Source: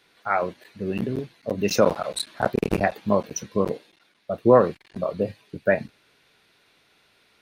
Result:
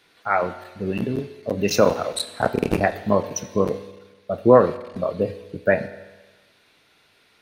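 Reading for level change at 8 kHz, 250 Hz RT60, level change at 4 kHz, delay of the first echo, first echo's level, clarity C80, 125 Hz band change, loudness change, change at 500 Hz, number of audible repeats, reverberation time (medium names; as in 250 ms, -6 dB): +2.5 dB, 1.3 s, +2.5 dB, no echo, no echo, 15.0 dB, +2.5 dB, +2.0 dB, +2.5 dB, no echo, 1.2 s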